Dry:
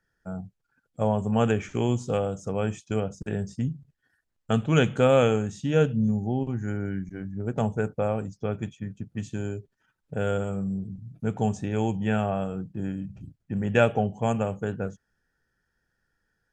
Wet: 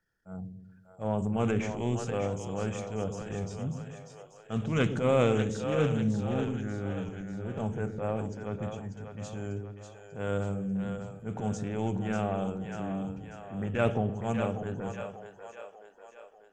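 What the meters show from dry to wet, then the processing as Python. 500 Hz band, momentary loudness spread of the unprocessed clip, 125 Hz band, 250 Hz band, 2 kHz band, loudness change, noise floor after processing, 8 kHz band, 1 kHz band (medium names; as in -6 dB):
-5.0 dB, 13 LU, -4.5 dB, -4.0 dB, -5.5 dB, -5.0 dB, -56 dBFS, -2.0 dB, -5.0 dB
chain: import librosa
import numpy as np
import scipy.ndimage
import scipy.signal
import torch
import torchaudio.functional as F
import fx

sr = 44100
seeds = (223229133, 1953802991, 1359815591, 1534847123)

y = fx.transient(x, sr, attack_db=-10, sustain_db=5)
y = fx.echo_split(y, sr, split_hz=440.0, low_ms=118, high_ms=592, feedback_pct=52, wet_db=-7)
y = fx.doppler_dist(y, sr, depth_ms=0.21)
y = F.gain(torch.from_numpy(y), -4.5).numpy()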